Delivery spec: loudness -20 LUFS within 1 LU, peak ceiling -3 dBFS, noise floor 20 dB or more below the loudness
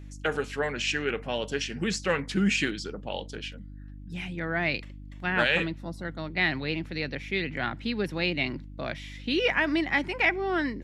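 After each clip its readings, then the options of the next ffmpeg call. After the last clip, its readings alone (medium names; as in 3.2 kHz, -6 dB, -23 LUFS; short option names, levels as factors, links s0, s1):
hum 50 Hz; highest harmonic 300 Hz; hum level -40 dBFS; loudness -28.5 LUFS; peak level -10.0 dBFS; loudness target -20.0 LUFS
-> -af "bandreject=f=50:t=h:w=4,bandreject=f=100:t=h:w=4,bandreject=f=150:t=h:w=4,bandreject=f=200:t=h:w=4,bandreject=f=250:t=h:w=4,bandreject=f=300:t=h:w=4"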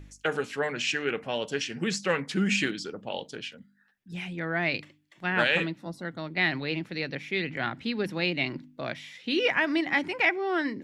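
hum not found; loudness -29.0 LUFS; peak level -10.0 dBFS; loudness target -20.0 LUFS
-> -af "volume=2.82,alimiter=limit=0.708:level=0:latency=1"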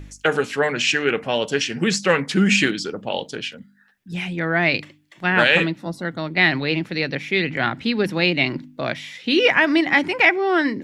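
loudness -20.0 LUFS; peak level -3.0 dBFS; noise floor -54 dBFS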